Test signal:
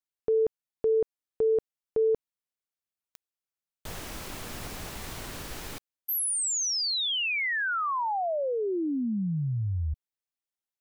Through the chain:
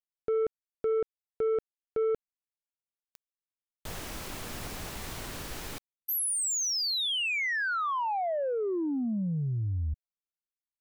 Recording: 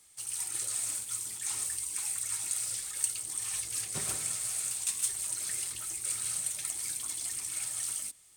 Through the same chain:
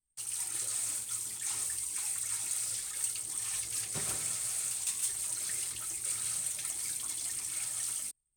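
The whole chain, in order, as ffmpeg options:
-af "anlmdn=0.00398,asoftclip=type=tanh:threshold=-24dB"

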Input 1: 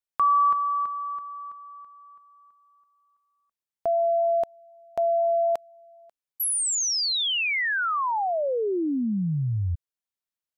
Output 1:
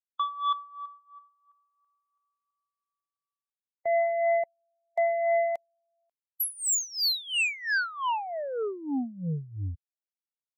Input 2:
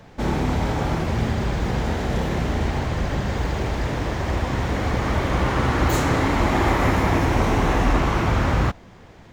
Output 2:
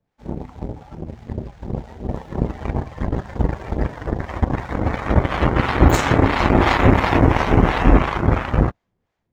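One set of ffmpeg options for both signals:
-filter_complex "[0:a]acrossover=split=590[a][b];[a]aeval=exprs='val(0)*(1-0.7/2+0.7/2*cos(2*PI*2.9*n/s))':c=same[c];[b]aeval=exprs='val(0)*(1-0.7/2-0.7/2*cos(2*PI*2.9*n/s))':c=same[d];[c][d]amix=inputs=2:normalize=0,dynaudnorm=f=910:g=5:m=5.5dB,aeval=exprs='0.631*(cos(1*acos(clip(val(0)/0.631,-1,1)))-cos(1*PI/2))+0.0794*(cos(7*acos(clip(val(0)/0.631,-1,1)))-cos(7*PI/2))':c=same,afftdn=nr=13:nf=-35,volume=4.5dB"

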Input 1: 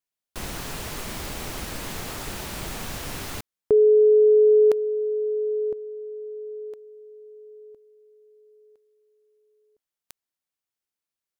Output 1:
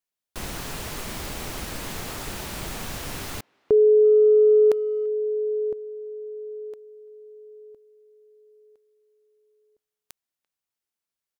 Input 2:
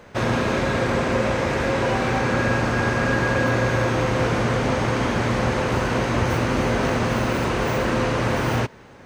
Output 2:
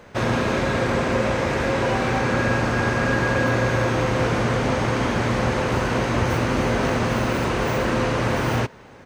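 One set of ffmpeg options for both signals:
-filter_complex "[0:a]asplit=2[a][b];[b]adelay=340,highpass=300,lowpass=3.4k,asoftclip=type=hard:threshold=-16.5dB,volume=-29dB[c];[a][c]amix=inputs=2:normalize=0"

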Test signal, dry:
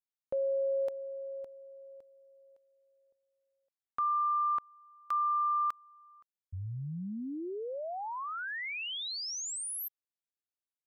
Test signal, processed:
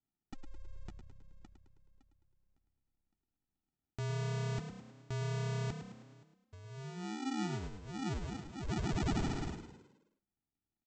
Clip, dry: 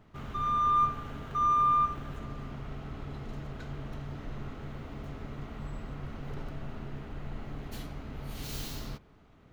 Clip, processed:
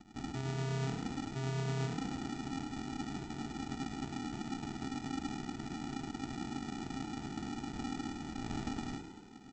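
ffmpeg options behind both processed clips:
-filter_complex "[0:a]acrossover=split=370[a][b];[a]acompressor=threshold=-40dB:ratio=6:attack=68:release=191:knee=2.83:detection=peak[c];[c][b]amix=inputs=2:normalize=0,asplit=3[d][e][f];[d]bandpass=f=300:t=q:w=8,volume=0dB[g];[e]bandpass=f=870:t=q:w=8,volume=-6dB[h];[f]bandpass=f=2.24k:t=q:w=8,volume=-9dB[i];[g][h][i]amix=inputs=3:normalize=0,equalizer=f=3.6k:w=1.2:g=10.5,areverse,acompressor=threshold=-53dB:ratio=6:attack=26:release=126:knee=6,areverse,bass=f=250:g=-1,treble=f=4k:g=12,aresample=16000,acrusher=samples=30:mix=1:aa=0.000001,aresample=44100,asplit=2[j][k];[k]adelay=15,volume=-13dB[l];[j][l]amix=inputs=2:normalize=0,asplit=7[m][n][o][p][q][r][s];[n]adelay=106,afreqshift=33,volume=-9dB[t];[o]adelay=212,afreqshift=66,volume=-15.2dB[u];[p]adelay=318,afreqshift=99,volume=-21.4dB[v];[q]adelay=424,afreqshift=132,volume=-27.6dB[w];[r]adelay=530,afreqshift=165,volume=-33.8dB[x];[s]adelay=636,afreqshift=198,volume=-40dB[y];[m][t][u][v][w][x][y]amix=inputs=7:normalize=0,volume=16dB"

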